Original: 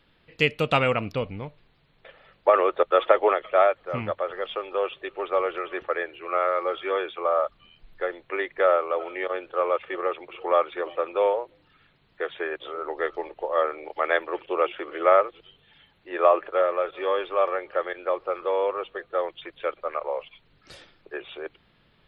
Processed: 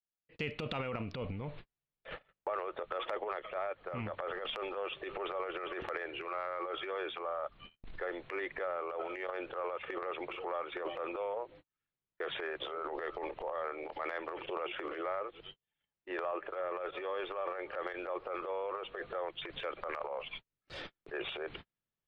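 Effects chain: gate -49 dBFS, range -49 dB; low-pass 3.7 kHz 12 dB/octave; transient shaper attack -9 dB, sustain +11 dB; compression 6:1, threshold -42 dBFS, peak gain reduction 26.5 dB; trim +5 dB

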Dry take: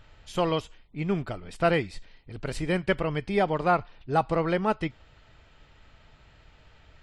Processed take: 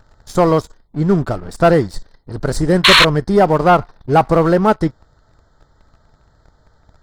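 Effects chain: Butterworth band-stop 2.6 kHz, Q 0.96; painted sound noise, 2.84–3.05 s, 930–4400 Hz -20 dBFS; waveshaping leveller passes 2; trim +6.5 dB

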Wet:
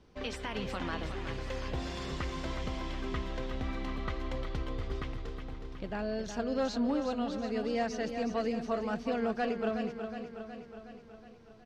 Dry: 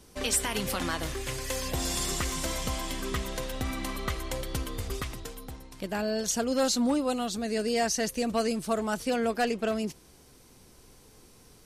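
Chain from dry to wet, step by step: distance through air 220 m; feedback delay 367 ms, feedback 60%, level -8 dB; trim -4.5 dB

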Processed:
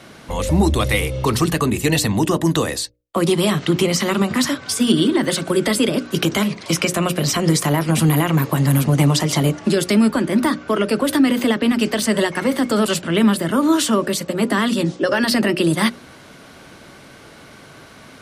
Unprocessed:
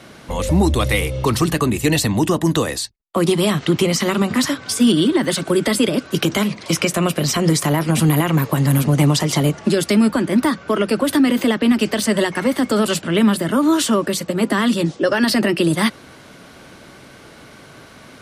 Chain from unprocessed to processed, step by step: hum notches 60/120/180/240/300/360/420/480/540/600 Hz

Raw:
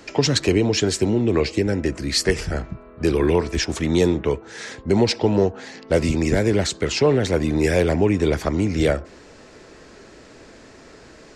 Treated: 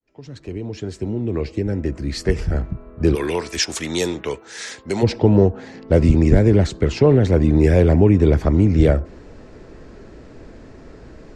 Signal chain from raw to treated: fade-in on the opening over 3.14 s; tilt EQ -2.5 dB/octave, from 3.14 s +2.5 dB/octave, from 5.02 s -3 dB/octave; trim -1 dB

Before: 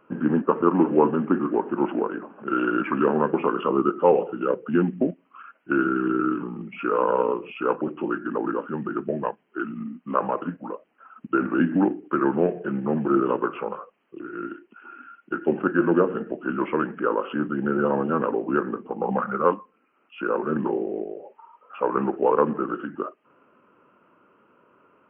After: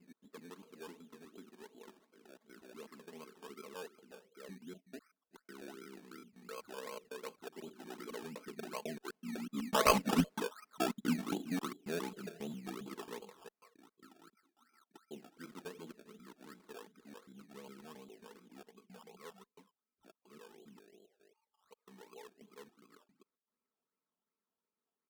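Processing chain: slices played last to first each 130 ms, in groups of 2; Doppler pass-by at 10.10 s, 14 m/s, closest 2.5 m; low-pass 1.7 kHz 24 dB/octave; comb 4.6 ms, depth 51%; decimation with a swept rate 17×, swing 60% 2.7 Hz; one-sided clip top -23.5 dBFS; trim +1 dB

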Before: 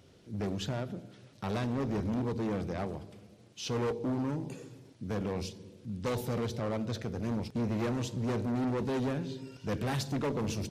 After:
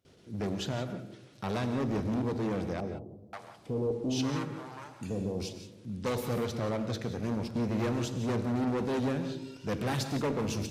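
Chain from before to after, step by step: gate with hold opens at -50 dBFS; bass shelf 120 Hz -4 dB; 2.80–5.40 s: bands offset in time lows, highs 530 ms, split 740 Hz; gated-style reverb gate 200 ms rising, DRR 9 dB; trim +1.5 dB; SBC 192 kbps 48 kHz

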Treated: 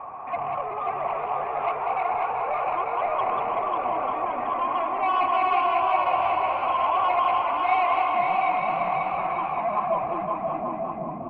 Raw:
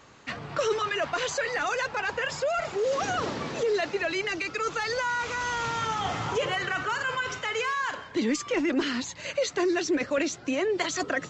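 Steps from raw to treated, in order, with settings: pitch bend over the whole clip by -10 st starting unshifted; in parallel at -2 dB: compressor with a negative ratio -38 dBFS; on the sum: peak limiter -21 dBFS, peak gain reduction 5.5 dB; sine folder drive 7 dB, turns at -21 dBFS; cascade formant filter a; saturation -30.5 dBFS, distortion -13 dB; low-pass sweep 2.3 kHz -> 270 Hz, 9.57–10.25 s; on a send: bouncing-ball echo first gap 540 ms, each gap 0.65×, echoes 5; on the sum: modulated delay 190 ms, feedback 68%, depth 92 cents, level -6 dB; trim +8.5 dB

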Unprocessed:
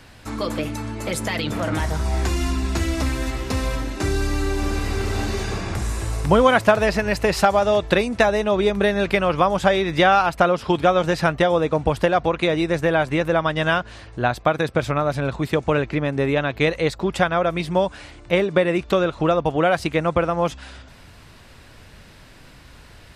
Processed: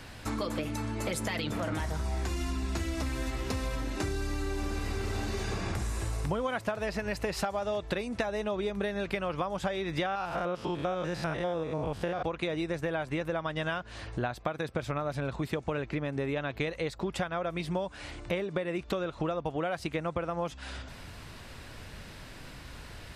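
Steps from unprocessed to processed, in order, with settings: 10.06–12.23 s: spectrogram pixelated in time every 100 ms; compression 6:1, threshold -30 dBFS, peak gain reduction 19 dB

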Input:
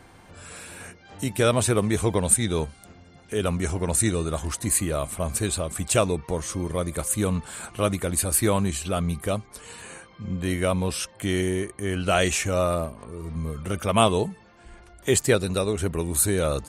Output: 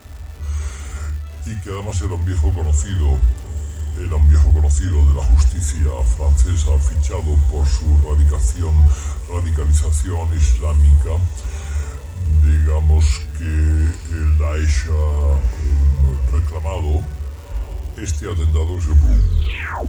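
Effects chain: tape stop on the ending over 0.90 s; dynamic bell 1 kHz, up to +5 dB, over -37 dBFS, Q 0.7; reverse; compression, threshold -29 dBFS, peak gain reduction 17.5 dB; reverse; wide varispeed 0.839×; comb of notches 170 Hz; echo that smears into a reverb 921 ms, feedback 47%, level -13 dB; on a send at -8.5 dB: reverberation, pre-delay 46 ms; on the sum: crackle 410 per s -39 dBFS; trim +4 dB

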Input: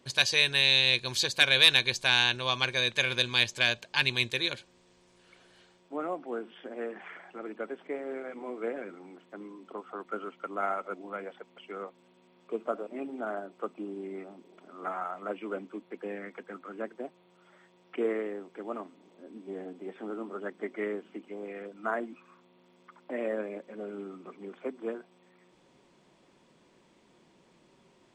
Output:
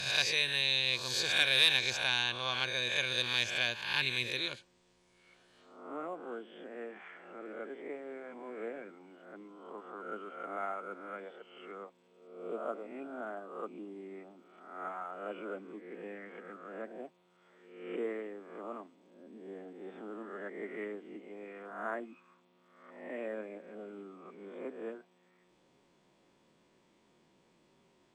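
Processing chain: reverse spectral sustain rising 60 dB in 0.83 s; trim -8 dB

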